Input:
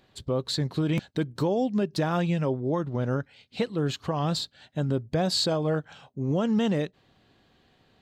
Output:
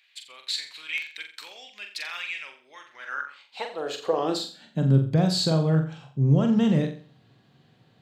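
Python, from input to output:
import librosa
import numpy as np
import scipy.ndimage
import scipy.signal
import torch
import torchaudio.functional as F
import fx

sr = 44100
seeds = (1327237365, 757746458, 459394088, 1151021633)

y = fx.room_flutter(x, sr, wall_m=7.5, rt60_s=0.41)
y = fx.filter_sweep_highpass(y, sr, from_hz=2300.0, to_hz=130.0, start_s=2.86, end_s=5.05, q=4.3)
y = y * 10.0 ** (-1.5 / 20.0)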